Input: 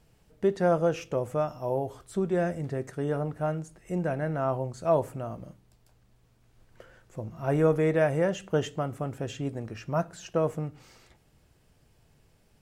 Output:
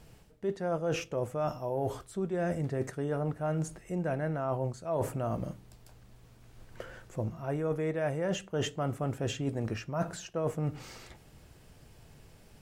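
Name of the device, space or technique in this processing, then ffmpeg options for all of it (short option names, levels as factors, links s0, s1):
compression on the reversed sound: -af "areverse,acompressor=threshold=0.0158:ratio=12,areverse,volume=2.37"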